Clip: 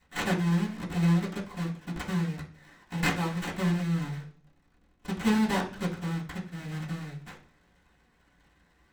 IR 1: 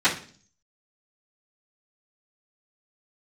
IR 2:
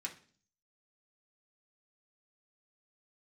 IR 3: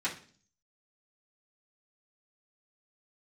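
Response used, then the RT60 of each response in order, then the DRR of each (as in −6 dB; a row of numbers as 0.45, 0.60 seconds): 3; 0.45, 0.45, 0.45 seconds; −19.0, −2.0, −10.5 decibels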